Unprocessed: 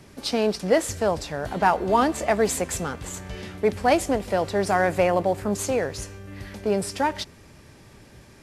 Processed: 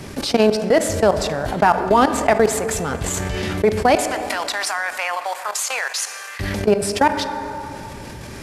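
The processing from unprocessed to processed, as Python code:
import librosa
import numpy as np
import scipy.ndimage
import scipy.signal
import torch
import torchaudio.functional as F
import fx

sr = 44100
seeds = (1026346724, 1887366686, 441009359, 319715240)

y = fx.highpass(x, sr, hz=980.0, slope=24, at=(3.95, 6.4))
y = fx.transient(y, sr, attack_db=0, sustain_db=-7)
y = fx.level_steps(y, sr, step_db=22)
y = fx.rev_plate(y, sr, seeds[0], rt60_s=1.8, hf_ratio=0.6, predelay_ms=0, drr_db=15.5)
y = fx.env_flatten(y, sr, amount_pct=50)
y = y * librosa.db_to_amplitude(9.0)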